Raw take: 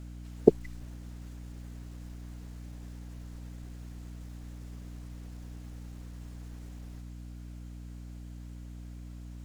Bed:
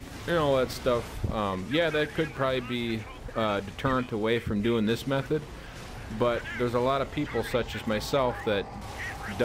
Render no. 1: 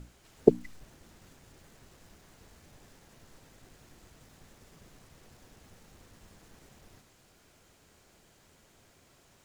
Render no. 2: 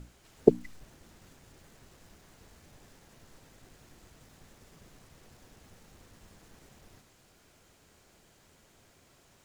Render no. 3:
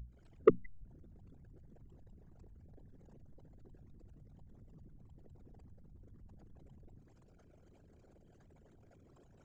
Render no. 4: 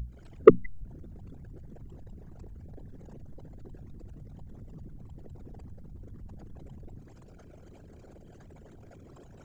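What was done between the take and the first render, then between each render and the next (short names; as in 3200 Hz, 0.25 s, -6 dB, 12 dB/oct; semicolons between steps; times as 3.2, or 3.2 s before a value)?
notches 60/120/180/240/300 Hz
nothing audible
formant sharpening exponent 3; soft clip -13.5 dBFS, distortion -9 dB
gain +12 dB; limiter -3 dBFS, peak gain reduction 1.5 dB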